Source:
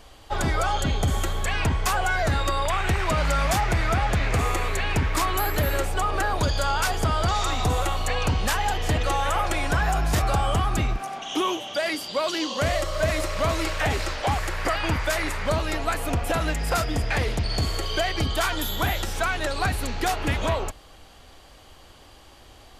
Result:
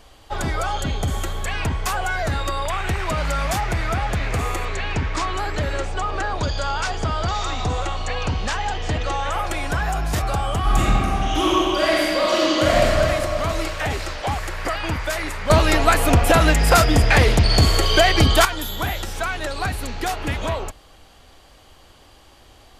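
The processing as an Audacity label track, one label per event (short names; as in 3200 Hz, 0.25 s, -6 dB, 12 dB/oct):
4.650000	9.320000	LPF 7300 Hz 24 dB/oct
10.590000	12.980000	reverb throw, RT60 2.5 s, DRR -6.5 dB
15.500000	18.450000	gain +10 dB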